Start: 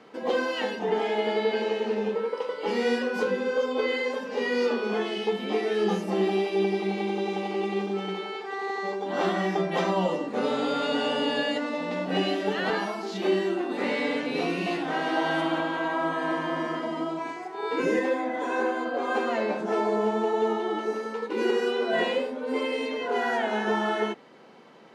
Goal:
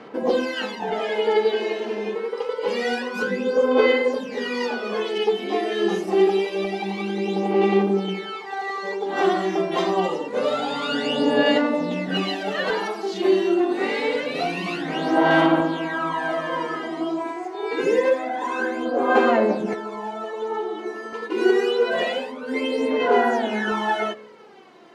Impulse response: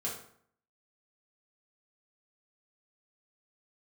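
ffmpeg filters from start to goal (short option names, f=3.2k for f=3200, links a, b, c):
-filter_complex "[0:a]asettb=1/sr,asplit=3[a][b][c];[a]atrim=end=19.734[d];[b]atrim=start=19.73:end=21.13,asetpts=PTS-STARTPTS,afade=t=in:d=0.004:c=qsin,afade=t=out:st=1.396:d=0.004:c=qsin,acrossover=split=800|1900[e][f][g];[e]acompressor=threshold=-33dB:ratio=4[h];[f]acompressor=threshold=-38dB:ratio=4[i];[g]acompressor=threshold=-52dB:ratio=4[j];[h][i][j]amix=inputs=3:normalize=0[k];[c]atrim=start=21.126[l];[d][k]acrossfade=d=0.004:c1=hsin:c2=qsin[m];[m][l]acrossfade=d=0.004:c1=qsin:c2=hsin,asplit=2[n][o];[1:a]atrim=start_sample=2205,adelay=94[p];[o][p]afir=irnorm=-1:irlink=0,volume=-23dB[q];[n][q]amix=inputs=2:normalize=0,aphaser=in_gain=1:out_gain=1:delay=2.9:decay=0.63:speed=0.26:type=sinusoidal,volume=1.5dB"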